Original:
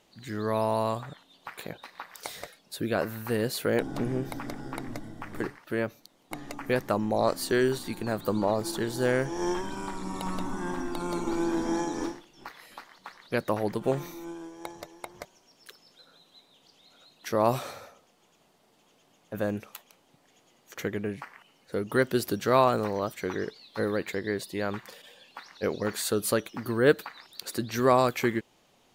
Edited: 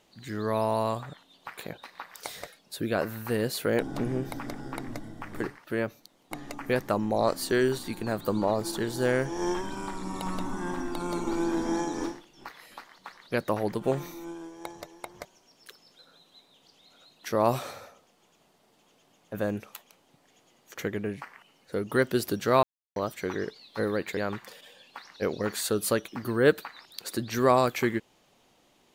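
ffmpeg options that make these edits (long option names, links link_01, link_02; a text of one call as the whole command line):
ffmpeg -i in.wav -filter_complex "[0:a]asplit=4[link_01][link_02][link_03][link_04];[link_01]atrim=end=22.63,asetpts=PTS-STARTPTS,afade=type=out:start_time=22.626:duration=0.004:curve=hsin[link_05];[link_02]atrim=start=22.63:end=22.96,asetpts=PTS-STARTPTS,volume=0[link_06];[link_03]atrim=start=22.96:end=24.172,asetpts=PTS-STARTPTS,afade=type=in:duration=0.004:curve=hsin[link_07];[link_04]atrim=start=24.578[link_08];[link_05][link_06][link_07]concat=n=3:v=0:a=1[link_09];[link_09][link_08]acrossfade=duration=0.004:curve1=hsin:curve2=hsin" out.wav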